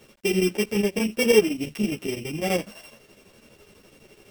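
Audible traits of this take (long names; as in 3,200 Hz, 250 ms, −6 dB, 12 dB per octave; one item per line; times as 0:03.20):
a buzz of ramps at a fixed pitch in blocks of 16 samples
chopped level 12 Hz, depth 65%, duty 70%
a quantiser's noise floor 10 bits, dither none
a shimmering, thickened sound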